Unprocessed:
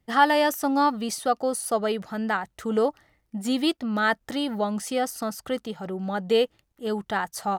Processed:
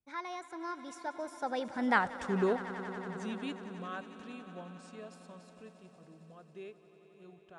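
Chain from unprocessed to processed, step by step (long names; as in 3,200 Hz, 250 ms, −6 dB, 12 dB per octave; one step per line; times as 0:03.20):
source passing by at 0:02.03, 59 m/s, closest 11 metres
high-shelf EQ 5,500 Hz −5 dB
on a send: echo that builds up and dies away 91 ms, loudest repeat 5, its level −17.5 dB
on the sum: downsampling to 22,050 Hz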